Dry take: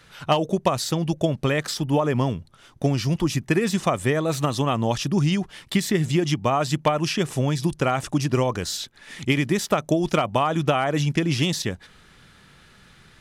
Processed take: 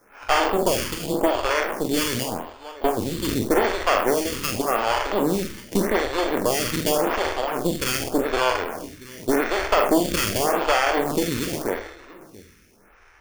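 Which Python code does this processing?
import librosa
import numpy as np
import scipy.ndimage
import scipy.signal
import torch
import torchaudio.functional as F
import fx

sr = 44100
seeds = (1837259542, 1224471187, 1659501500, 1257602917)

y = fx.spec_trails(x, sr, decay_s=0.78)
y = fx.high_shelf(y, sr, hz=3800.0, db=-8.0)
y = y + 10.0 ** (-16.5 / 20.0) * np.pad(y, (int(679 * sr / 1000.0), 0))[:len(y)]
y = fx.cheby_harmonics(y, sr, harmonics=(6,), levels_db=(-10,), full_scale_db=-6.5)
y = fx.sample_hold(y, sr, seeds[0], rate_hz=3900.0, jitter_pct=0)
y = fx.peak_eq(y, sr, hz=140.0, db=-14.5, octaves=0.66)
y = fx.doubler(y, sr, ms=47.0, db=-8)
y = fx.stagger_phaser(y, sr, hz=0.86)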